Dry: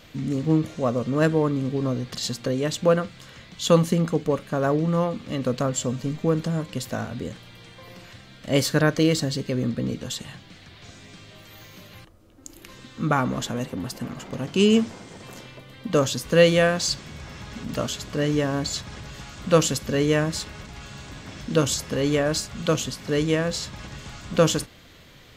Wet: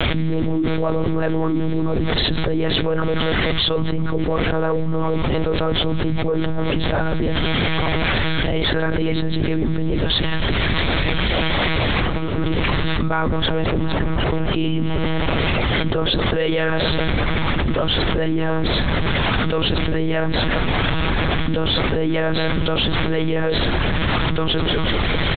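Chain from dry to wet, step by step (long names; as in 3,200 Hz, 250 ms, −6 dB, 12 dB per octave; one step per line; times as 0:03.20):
notch filter 2,800 Hz, Q 22
in parallel at −11 dB: soft clipping −16.5 dBFS, distortion −12 dB
on the sum: flanger 0.99 Hz, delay 4.6 ms, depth 6.7 ms, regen +13%
on a send: repeating echo 190 ms, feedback 50%, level −21 dB
on the sum: one-pitch LPC vocoder at 8 kHz 160 Hz
envelope flattener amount 100%
level −6 dB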